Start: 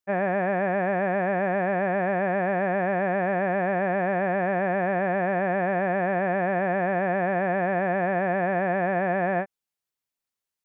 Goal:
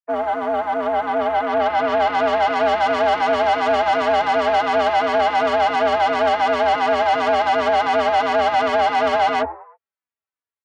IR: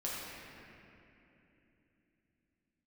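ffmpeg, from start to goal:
-filter_complex "[0:a]afwtdn=0.0447,lowpass=1700,equalizer=frequency=99:width_type=o:width=1.3:gain=-12.5,aecho=1:1:5.5:0.39,acrossover=split=200|800[link_01][link_02][link_03];[link_03]acontrast=51[link_04];[link_01][link_02][link_04]amix=inputs=3:normalize=0,asplit=4[link_05][link_06][link_07][link_08];[link_06]adelay=105,afreqshift=77,volume=-22.5dB[link_09];[link_07]adelay=210,afreqshift=154,volume=-30dB[link_10];[link_08]adelay=315,afreqshift=231,volume=-37.6dB[link_11];[link_05][link_09][link_10][link_11]amix=inputs=4:normalize=0,asplit=2[link_12][link_13];[link_13]asoftclip=type=hard:threshold=-24.5dB,volume=-5dB[link_14];[link_12][link_14]amix=inputs=2:normalize=0,dynaudnorm=framelen=680:gausssize=5:maxgain=11.5dB,asoftclip=type=tanh:threshold=-16dB,afreqshift=72,asplit=2[link_15][link_16];[link_16]adelay=3.5,afreqshift=-2.8[link_17];[link_15][link_17]amix=inputs=2:normalize=1,volume=3dB"

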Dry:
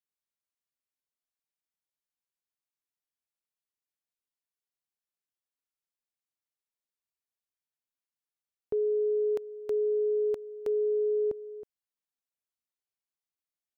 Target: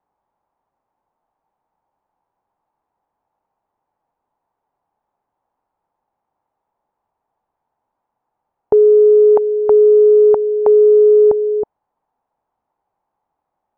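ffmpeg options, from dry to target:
ffmpeg -i in.wav -af "apsyclip=30.5dB,lowpass=frequency=860:width_type=q:width=4.9,volume=-8dB" out.wav

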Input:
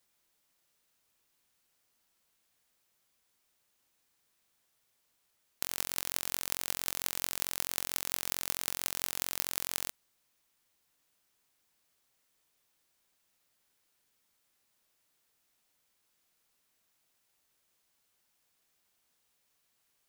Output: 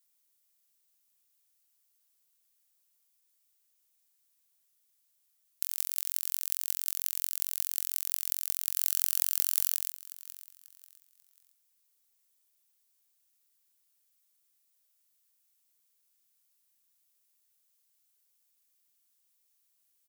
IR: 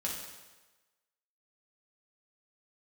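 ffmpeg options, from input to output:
-filter_complex "[0:a]aecho=1:1:540|1080|1620:0.2|0.0638|0.0204,asettb=1/sr,asplit=3[link_01][link_02][link_03];[link_01]atrim=end=8.764[link_04];[link_02]atrim=start=8.76:end=9.75,asetpts=PTS-STARTPTS,afade=type=in:duration=0.004:curve=qsin,afade=type=out:start_time=0.986:duration=0.004:curve=qsin,aeval=exprs='0.841*sin(PI/2*3.16*val(0)/0.841)':channel_layout=same[link_05];[link_03]atrim=start=9.746[link_06];[link_04][link_05]acrossfade=duration=0.004:curve1=hsin:curve2=qsin[link_07];[link_07][link_06]acrossfade=duration=0.004:curve1=qsin:curve2=hsin,crystalizer=i=4.5:c=0,volume=-14.5dB"

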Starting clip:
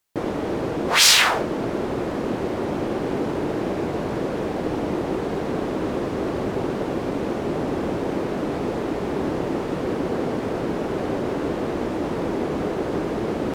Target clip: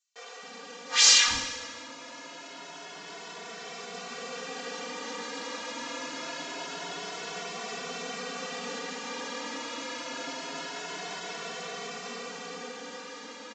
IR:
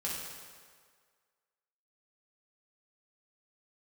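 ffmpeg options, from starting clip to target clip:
-filter_complex "[0:a]highpass=frequency=93:width=0.5412,highpass=frequency=93:width=1.3066,aderivative,aecho=1:1:4.2:0.89,dynaudnorm=framelen=910:gausssize=5:maxgain=7.5dB,aresample=16000,asoftclip=type=hard:threshold=-14dB,aresample=44100,aeval=exprs='0.398*(cos(1*acos(clip(val(0)/0.398,-1,1)))-cos(1*PI/2))+0.00562*(cos(2*acos(clip(val(0)/0.398,-1,1)))-cos(2*PI/2))':channel_layout=same,acrossover=split=400[link_01][link_02];[link_01]adelay=270[link_03];[link_03][link_02]amix=inputs=2:normalize=0,asplit=2[link_04][link_05];[1:a]atrim=start_sample=2205[link_06];[link_05][link_06]afir=irnorm=-1:irlink=0,volume=-5dB[link_07];[link_04][link_07]amix=inputs=2:normalize=0,asplit=2[link_08][link_09];[link_09]adelay=2.2,afreqshift=0.25[link_10];[link_08][link_10]amix=inputs=2:normalize=1"

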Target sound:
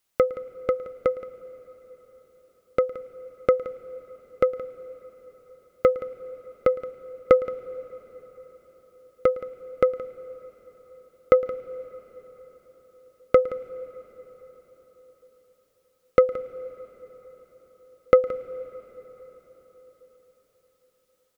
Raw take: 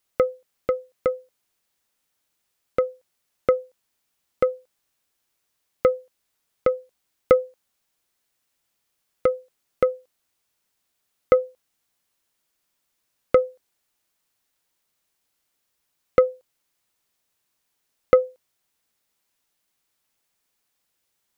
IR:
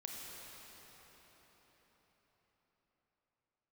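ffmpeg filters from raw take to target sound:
-filter_complex "[0:a]aecho=1:1:172:0.15,asplit=2[link_01][link_02];[1:a]atrim=start_sample=2205,adelay=110[link_03];[link_02][link_03]afir=irnorm=-1:irlink=0,volume=-14.5dB[link_04];[link_01][link_04]amix=inputs=2:normalize=0"

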